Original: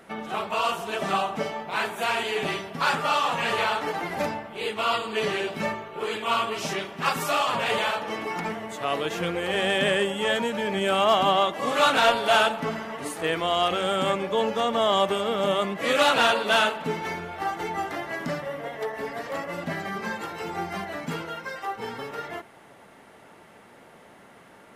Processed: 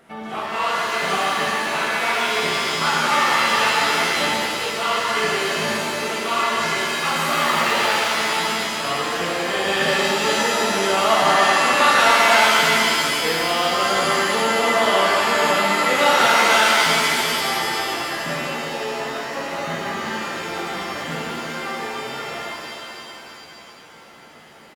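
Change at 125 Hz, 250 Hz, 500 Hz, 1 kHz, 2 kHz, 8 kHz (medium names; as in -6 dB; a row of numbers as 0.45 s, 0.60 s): +2.5 dB, +3.5 dB, +3.0 dB, +6.5 dB, +9.0 dB, +13.0 dB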